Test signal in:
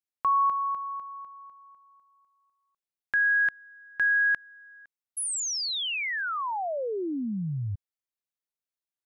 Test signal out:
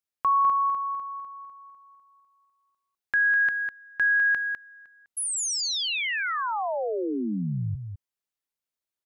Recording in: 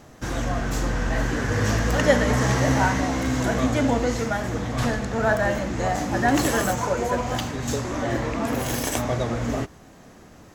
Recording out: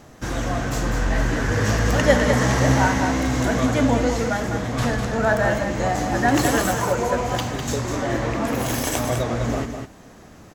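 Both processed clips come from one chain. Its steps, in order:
single-tap delay 202 ms −7 dB
level +1.5 dB

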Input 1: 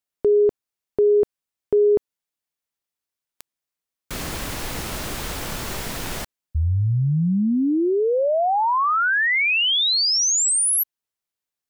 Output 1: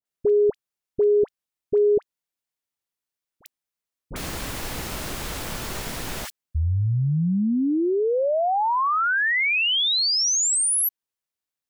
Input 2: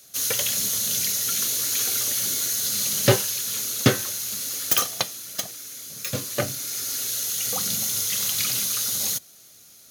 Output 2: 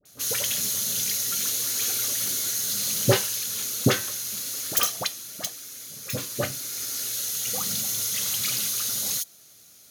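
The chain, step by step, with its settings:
all-pass dispersion highs, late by 55 ms, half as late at 1,100 Hz
level −2 dB

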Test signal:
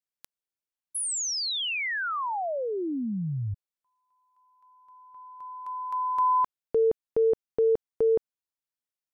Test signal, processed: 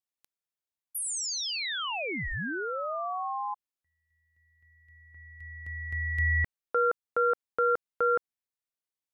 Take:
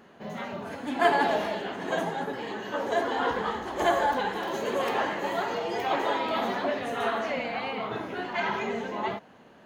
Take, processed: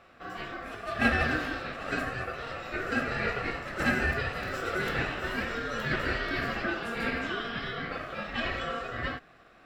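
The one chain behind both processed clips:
ring modulation 930 Hz

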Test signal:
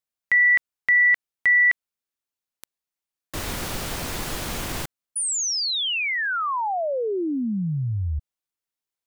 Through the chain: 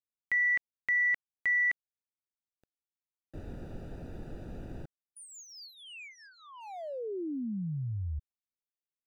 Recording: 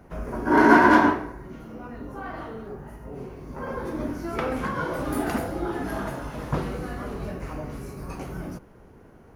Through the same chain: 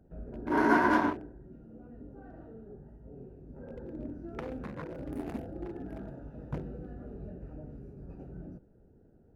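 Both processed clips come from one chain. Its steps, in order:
adaptive Wiener filter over 41 samples
level −9 dB

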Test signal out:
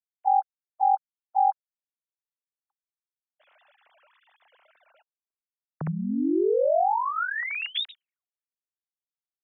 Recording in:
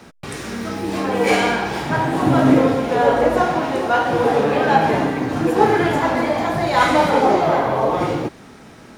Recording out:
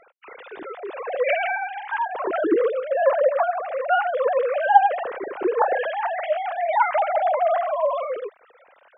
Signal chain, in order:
three sine waves on the formant tracks
level −5 dB

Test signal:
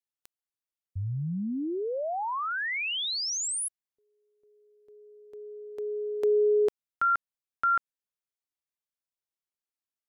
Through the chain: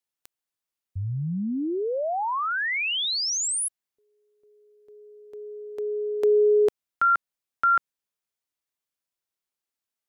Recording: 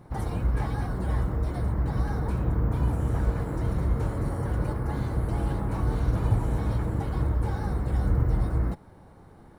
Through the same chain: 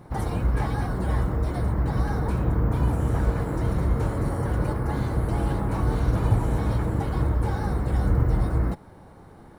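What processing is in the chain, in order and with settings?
low-shelf EQ 150 Hz −3 dB
level +4.5 dB

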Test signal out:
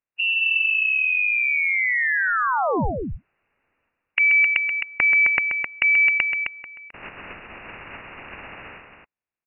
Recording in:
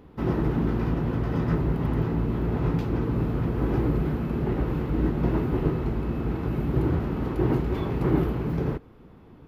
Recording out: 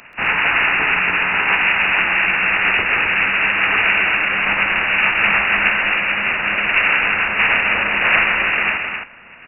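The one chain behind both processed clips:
ceiling on every frequency bin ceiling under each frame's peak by 26 dB
voice inversion scrambler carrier 2,800 Hz
loudspeakers that aren't time-aligned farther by 45 metres −9 dB, 90 metres −6 dB
level +7 dB

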